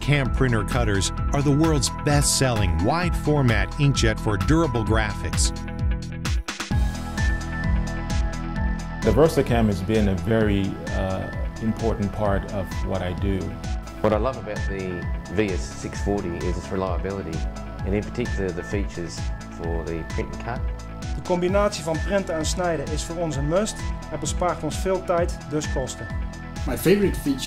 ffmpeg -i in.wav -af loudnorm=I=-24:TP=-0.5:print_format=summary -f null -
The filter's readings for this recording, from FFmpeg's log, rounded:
Input Integrated:    -24.3 LUFS
Input True Peak:      -4.9 dBTP
Input LRA:             6.2 LU
Input Threshold:     -34.3 LUFS